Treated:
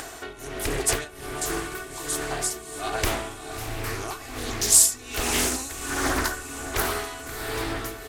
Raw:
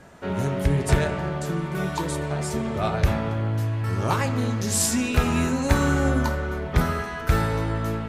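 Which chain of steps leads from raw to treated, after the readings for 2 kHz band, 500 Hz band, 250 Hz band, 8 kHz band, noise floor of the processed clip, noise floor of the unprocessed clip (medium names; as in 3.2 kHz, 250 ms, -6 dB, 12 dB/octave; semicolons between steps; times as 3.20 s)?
-0.5 dB, -4.5 dB, -9.5 dB, +8.0 dB, -41 dBFS, -32 dBFS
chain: octave divider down 2 oct, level +3 dB; tremolo 1.3 Hz, depth 94%; RIAA curve recording; comb 2.7 ms, depth 75%; on a send: echo that smears into a reverb 649 ms, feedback 44%, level -12 dB; on the sum: upward compressor, threshold -28 dBFS; loudspeaker Doppler distortion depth 0.93 ms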